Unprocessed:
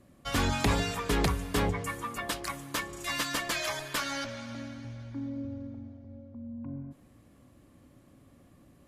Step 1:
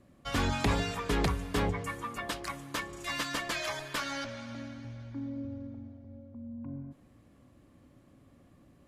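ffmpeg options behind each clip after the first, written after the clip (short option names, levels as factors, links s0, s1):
-af "highshelf=f=8200:g=-8.5,volume=0.841"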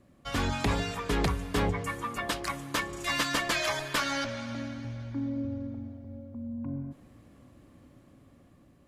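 -af "dynaudnorm=f=770:g=5:m=1.88"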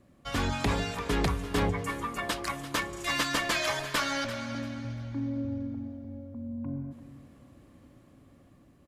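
-af "aecho=1:1:342|684|1026:0.2|0.0479|0.0115"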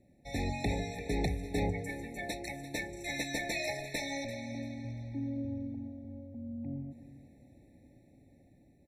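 -af "afftfilt=real='re*eq(mod(floor(b*sr/1024/880),2),0)':imag='im*eq(mod(floor(b*sr/1024/880),2),0)':win_size=1024:overlap=0.75,volume=0.631"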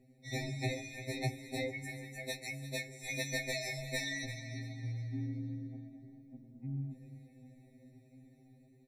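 -af "afftfilt=real='re*2.45*eq(mod(b,6),0)':imag='im*2.45*eq(mod(b,6),0)':win_size=2048:overlap=0.75,volume=1.33"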